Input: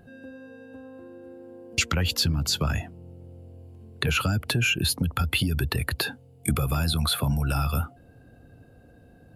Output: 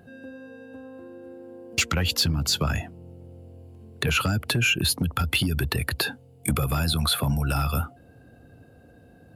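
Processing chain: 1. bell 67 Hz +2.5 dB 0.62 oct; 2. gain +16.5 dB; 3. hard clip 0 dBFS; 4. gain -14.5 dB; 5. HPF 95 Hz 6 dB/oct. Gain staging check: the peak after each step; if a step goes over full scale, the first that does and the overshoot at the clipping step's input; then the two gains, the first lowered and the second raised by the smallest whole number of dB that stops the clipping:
-8.5, +8.0, 0.0, -14.5, -12.5 dBFS; step 2, 8.0 dB; step 2 +8.5 dB, step 4 -6.5 dB

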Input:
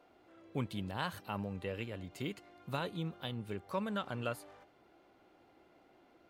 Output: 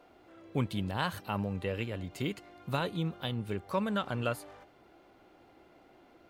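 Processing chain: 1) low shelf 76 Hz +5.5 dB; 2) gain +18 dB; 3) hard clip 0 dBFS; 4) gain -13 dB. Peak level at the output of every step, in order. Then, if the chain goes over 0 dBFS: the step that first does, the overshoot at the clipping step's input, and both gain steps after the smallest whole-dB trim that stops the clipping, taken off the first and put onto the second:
-20.5, -2.5, -2.5, -15.5 dBFS; no overload

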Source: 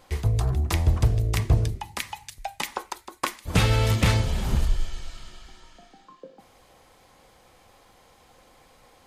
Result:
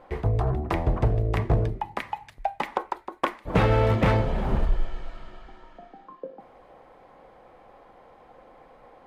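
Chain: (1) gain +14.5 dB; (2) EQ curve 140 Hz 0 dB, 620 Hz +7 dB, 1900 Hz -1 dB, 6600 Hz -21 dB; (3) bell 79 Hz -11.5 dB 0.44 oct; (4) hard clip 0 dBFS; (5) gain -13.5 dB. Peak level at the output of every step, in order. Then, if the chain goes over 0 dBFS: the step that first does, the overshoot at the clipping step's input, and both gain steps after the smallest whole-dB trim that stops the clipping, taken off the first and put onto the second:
+5.5, +6.5, +6.5, 0.0, -13.5 dBFS; step 1, 6.5 dB; step 1 +7.5 dB, step 5 -6.5 dB

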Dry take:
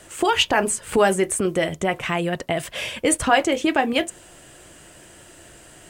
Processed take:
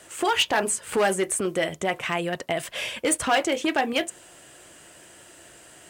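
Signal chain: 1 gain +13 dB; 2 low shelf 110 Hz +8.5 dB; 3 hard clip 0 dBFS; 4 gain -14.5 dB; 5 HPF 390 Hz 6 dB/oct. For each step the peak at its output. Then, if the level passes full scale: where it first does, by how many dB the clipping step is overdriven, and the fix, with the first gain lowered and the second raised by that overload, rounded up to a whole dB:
+8.5, +8.0, 0.0, -14.5, -10.5 dBFS; step 1, 8.0 dB; step 1 +5 dB, step 4 -6.5 dB

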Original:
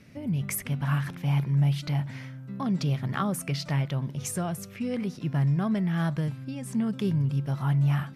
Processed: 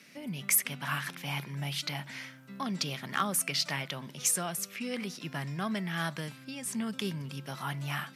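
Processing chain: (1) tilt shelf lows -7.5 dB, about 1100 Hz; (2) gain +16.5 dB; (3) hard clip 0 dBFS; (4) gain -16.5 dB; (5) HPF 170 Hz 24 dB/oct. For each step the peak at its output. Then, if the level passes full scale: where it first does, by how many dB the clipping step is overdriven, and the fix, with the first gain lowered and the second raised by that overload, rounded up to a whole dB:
-11.0, +5.5, 0.0, -16.5, -14.0 dBFS; step 2, 5.5 dB; step 2 +10.5 dB, step 4 -10.5 dB

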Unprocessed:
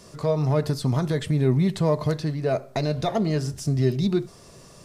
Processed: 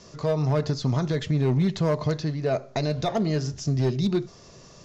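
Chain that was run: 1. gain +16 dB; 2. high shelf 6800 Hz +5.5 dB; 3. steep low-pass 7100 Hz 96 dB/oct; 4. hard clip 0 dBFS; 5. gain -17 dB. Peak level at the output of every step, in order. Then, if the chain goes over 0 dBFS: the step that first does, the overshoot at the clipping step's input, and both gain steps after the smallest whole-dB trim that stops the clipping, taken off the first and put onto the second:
+6.0, +6.0, +6.0, 0.0, -17.0 dBFS; step 1, 6.0 dB; step 1 +10 dB, step 5 -11 dB

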